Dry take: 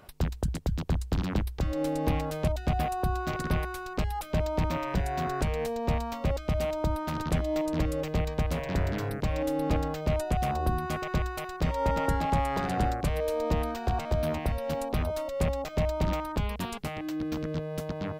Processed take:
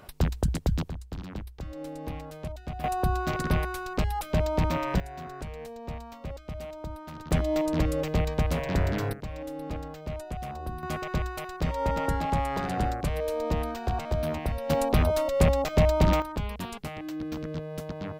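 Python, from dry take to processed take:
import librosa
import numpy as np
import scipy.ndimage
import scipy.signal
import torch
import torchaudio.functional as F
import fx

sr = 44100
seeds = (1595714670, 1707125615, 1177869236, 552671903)

y = fx.gain(x, sr, db=fx.steps((0.0, 3.5), (0.89, -9.0), (2.84, 2.5), (5.0, -9.5), (7.31, 2.5), (9.13, -8.0), (10.83, -0.5), (14.7, 6.5), (16.22, -2.0)))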